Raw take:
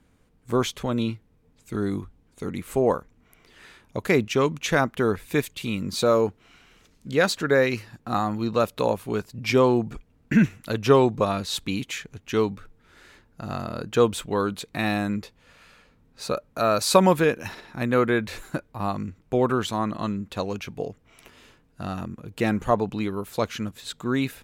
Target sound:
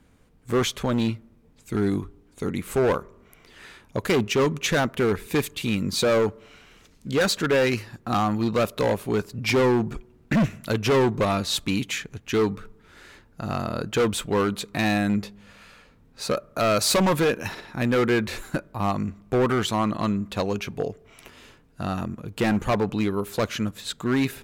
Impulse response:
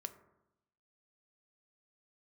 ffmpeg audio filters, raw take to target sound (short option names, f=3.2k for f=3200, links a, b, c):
-filter_complex "[0:a]asoftclip=type=hard:threshold=-20.5dB,asplit=2[a][b];[1:a]atrim=start_sample=2205[c];[b][c]afir=irnorm=-1:irlink=0,volume=-11dB[d];[a][d]amix=inputs=2:normalize=0,volume=2dB"